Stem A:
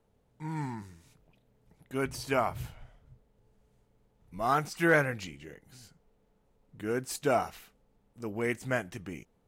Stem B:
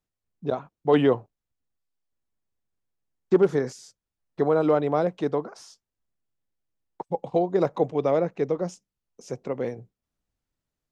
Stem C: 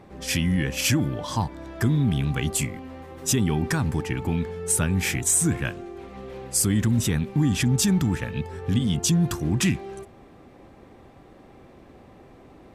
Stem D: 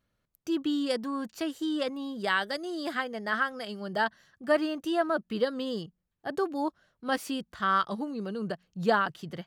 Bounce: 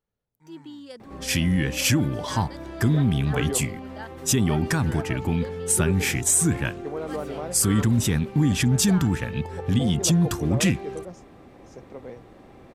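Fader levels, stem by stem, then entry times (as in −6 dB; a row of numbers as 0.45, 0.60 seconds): −17.0, −11.0, +1.0, −12.5 decibels; 0.00, 2.45, 1.00, 0.00 seconds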